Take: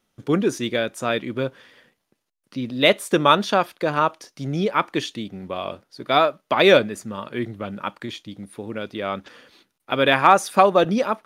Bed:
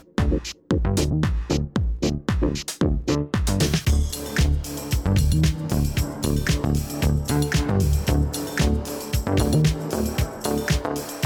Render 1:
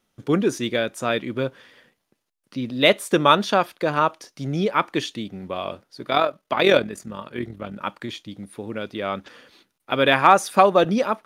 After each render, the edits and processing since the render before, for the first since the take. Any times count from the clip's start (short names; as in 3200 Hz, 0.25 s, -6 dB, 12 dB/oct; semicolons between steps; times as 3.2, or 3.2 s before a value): 6.1–7.81 AM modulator 42 Hz, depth 45%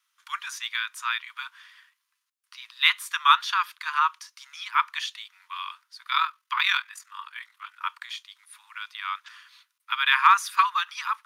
steep high-pass 970 Hz 96 dB/oct; dynamic EQ 8500 Hz, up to -5 dB, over -43 dBFS, Q 1.1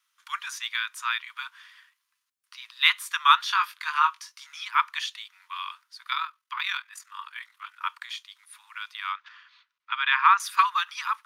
3.43–4.65 doubler 20 ms -6.5 dB; 6.14–6.92 gain -6.5 dB; 9.12–10.4 air absorption 190 m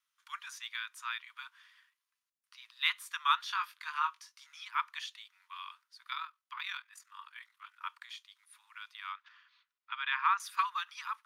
gain -10.5 dB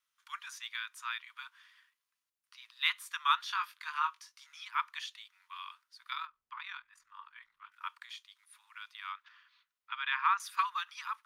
6.26–7.72 tilt -4 dB/oct